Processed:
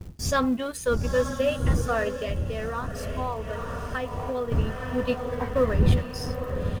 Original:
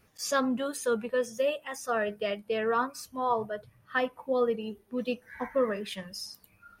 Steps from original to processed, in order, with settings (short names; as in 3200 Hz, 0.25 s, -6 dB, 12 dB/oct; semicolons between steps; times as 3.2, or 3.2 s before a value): G.711 law mismatch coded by A; wind noise 140 Hz -35 dBFS; diffused feedback echo 0.924 s, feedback 56%, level -8.5 dB; 2.08–4.52 compressor, threshold -31 dBFS, peak gain reduction 9.5 dB; bell 64 Hz +5.5 dB 1.6 oct; doubler 12 ms -12 dB; crackle 470/s -48 dBFS; gate with hold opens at -32 dBFS; gain +3.5 dB